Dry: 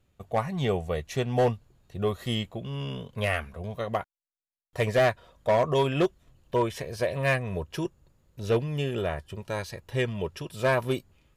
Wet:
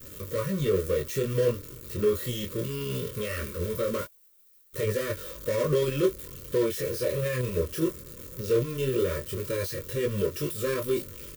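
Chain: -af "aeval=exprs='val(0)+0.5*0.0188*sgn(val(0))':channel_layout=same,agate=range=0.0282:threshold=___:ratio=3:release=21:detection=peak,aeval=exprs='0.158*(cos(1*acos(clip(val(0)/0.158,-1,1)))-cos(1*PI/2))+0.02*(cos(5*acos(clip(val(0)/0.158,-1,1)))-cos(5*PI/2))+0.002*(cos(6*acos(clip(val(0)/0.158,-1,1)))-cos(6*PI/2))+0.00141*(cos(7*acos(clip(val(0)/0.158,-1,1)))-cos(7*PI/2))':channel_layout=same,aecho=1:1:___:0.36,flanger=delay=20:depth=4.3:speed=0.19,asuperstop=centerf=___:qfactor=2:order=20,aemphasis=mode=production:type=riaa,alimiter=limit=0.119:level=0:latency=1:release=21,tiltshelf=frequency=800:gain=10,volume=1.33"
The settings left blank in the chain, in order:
0.0141, 2.2, 780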